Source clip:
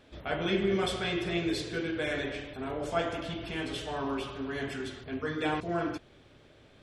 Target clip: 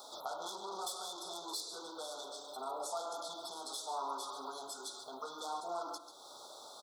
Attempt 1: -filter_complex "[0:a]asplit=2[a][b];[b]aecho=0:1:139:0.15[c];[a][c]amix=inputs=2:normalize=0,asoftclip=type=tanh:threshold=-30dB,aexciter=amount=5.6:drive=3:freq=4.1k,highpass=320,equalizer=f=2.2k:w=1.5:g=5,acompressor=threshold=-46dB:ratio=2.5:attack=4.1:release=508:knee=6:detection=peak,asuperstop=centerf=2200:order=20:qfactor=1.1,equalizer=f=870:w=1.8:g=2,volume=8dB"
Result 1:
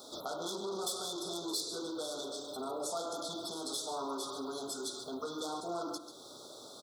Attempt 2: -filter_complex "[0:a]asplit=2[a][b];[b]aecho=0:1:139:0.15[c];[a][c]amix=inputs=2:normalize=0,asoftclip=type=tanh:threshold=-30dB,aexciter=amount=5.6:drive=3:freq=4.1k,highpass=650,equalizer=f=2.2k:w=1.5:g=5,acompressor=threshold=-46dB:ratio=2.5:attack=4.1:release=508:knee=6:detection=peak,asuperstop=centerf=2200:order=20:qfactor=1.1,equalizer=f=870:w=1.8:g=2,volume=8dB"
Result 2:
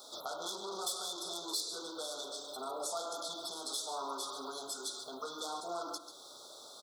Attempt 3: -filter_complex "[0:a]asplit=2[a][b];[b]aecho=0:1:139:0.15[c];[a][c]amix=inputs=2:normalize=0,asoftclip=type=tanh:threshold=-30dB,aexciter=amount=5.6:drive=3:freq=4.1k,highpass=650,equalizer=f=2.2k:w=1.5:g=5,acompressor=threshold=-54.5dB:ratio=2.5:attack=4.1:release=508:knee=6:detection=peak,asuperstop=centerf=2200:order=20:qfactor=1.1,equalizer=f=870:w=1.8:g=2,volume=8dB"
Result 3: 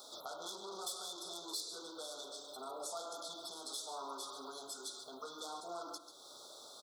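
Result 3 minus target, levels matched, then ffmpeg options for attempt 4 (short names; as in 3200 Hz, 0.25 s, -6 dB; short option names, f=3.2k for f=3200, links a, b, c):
1000 Hz band -4.0 dB
-filter_complex "[0:a]asplit=2[a][b];[b]aecho=0:1:139:0.15[c];[a][c]amix=inputs=2:normalize=0,asoftclip=type=tanh:threshold=-30dB,aexciter=amount=5.6:drive=3:freq=4.1k,highpass=650,equalizer=f=2.2k:w=1.5:g=5,acompressor=threshold=-54.5dB:ratio=2.5:attack=4.1:release=508:knee=6:detection=peak,asuperstop=centerf=2200:order=20:qfactor=1.1,equalizer=f=870:w=1.8:g=11,volume=8dB"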